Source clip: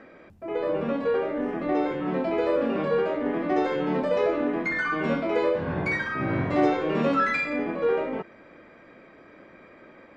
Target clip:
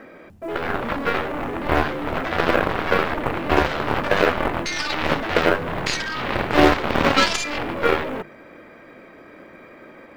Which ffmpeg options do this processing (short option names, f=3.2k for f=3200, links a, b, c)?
-af "aeval=exprs='0.299*(cos(1*acos(clip(val(0)/0.299,-1,1)))-cos(1*PI/2))+0.0237*(cos(6*acos(clip(val(0)/0.299,-1,1)))-cos(6*PI/2))+0.0841*(cos(7*acos(clip(val(0)/0.299,-1,1)))-cos(7*PI/2))':c=same,acrusher=bits=8:mode=log:mix=0:aa=0.000001,bandreject=f=50:t=h:w=6,bandreject=f=100:t=h:w=6,bandreject=f=150:t=h:w=6,bandreject=f=200:t=h:w=6,volume=6.5dB"